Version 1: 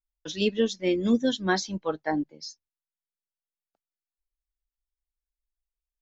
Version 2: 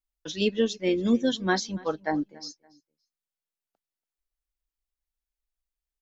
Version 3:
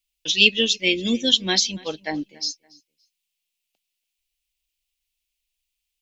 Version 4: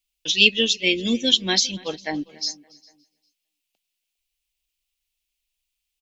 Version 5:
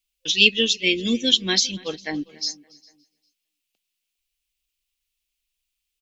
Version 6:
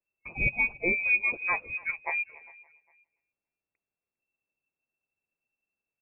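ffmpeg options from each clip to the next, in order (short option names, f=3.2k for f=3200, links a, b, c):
-filter_complex "[0:a]asplit=2[a][b];[b]adelay=284,lowpass=f=4.9k:p=1,volume=-22.5dB,asplit=2[c][d];[d]adelay=284,lowpass=f=4.9k:p=1,volume=0.31[e];[a][c][e]amix=inputs=3:normalize=0"
-af "highshelf=f=1.9k:t=q:w=3:g=11.5"
-filter_complex "[0:a]asplit=2[a][b];[b]adelay=404,lowpass=f=4k:p=1,volume=-23dB,asplit=2[c][d];[d]adelay=404,lowpass=f=4k:p=1,volume=0.25[e];[a][c][e]amix=inputs=3:normalize=0"
-af "superequalizer=8b=0.562:9b=0.562"
-af "lowpass=f=2.3k:t=q:w=0.5098,lowpass=f=2.3k:t=q:w=0.6013,lowpass=f=2.3k:t=q:w=0.9,lowpass=f=2.3k:t=q:w=2.563,afreqshift=-2700,volume=-2.5dB"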